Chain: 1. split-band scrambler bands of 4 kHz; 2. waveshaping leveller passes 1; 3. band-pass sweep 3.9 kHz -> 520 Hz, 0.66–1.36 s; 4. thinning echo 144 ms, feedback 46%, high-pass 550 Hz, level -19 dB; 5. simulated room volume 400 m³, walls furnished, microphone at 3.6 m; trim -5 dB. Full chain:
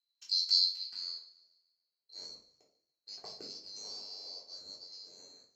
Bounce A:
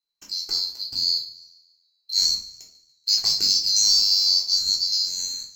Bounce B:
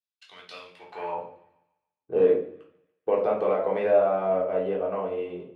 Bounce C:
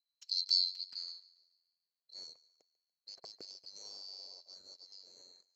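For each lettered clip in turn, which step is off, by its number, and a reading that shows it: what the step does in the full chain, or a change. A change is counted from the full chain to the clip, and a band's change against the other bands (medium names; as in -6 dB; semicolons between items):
3, crest factor change -7.5 dB; 1, 500 Hz band +9.0 dB; 5, echo-to-direct 4.5 dB to -19.0 dB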